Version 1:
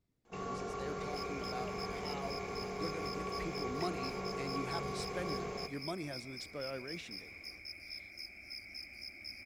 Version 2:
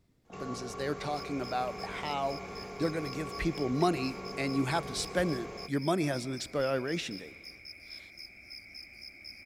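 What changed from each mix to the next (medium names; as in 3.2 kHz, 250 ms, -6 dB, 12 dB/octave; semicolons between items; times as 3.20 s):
speech +12.0 dB; first sound: send off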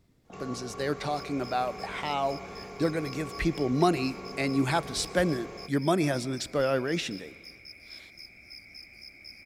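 speech +4.0 dB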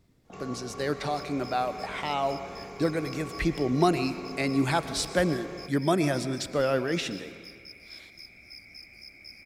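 speech: send +8.5 dB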